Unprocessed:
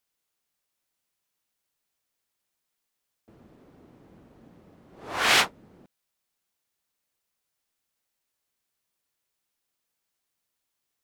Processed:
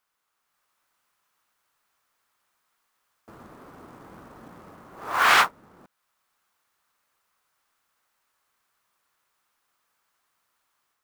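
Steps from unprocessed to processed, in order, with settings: in parallel at -7 dB: saturation -17.5 dBFS, distortion -13 dB; on the sum: peaking EQ 1.2 kHz +14 dB 1.4 oct; level rider gain up to 5 dB; short-mantissa float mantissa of 2-bit; trim -4 dB

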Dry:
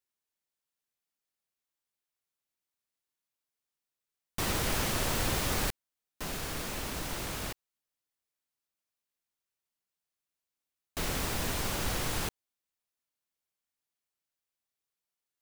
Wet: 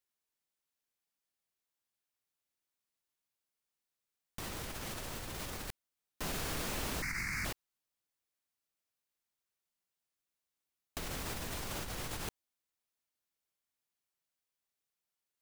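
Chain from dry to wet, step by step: 7.02–7.45 s: FFT filter 210 Hz 0 dB, 550 Hz -21 dB, 2.2 kHz +15 dB, 3.2 kHz -29 dB, 4.7 kHz +2 dB, 14 kHz -7 dB; compressor with a negative ratio -36 dBFS, ratio -1; trim -4 dB

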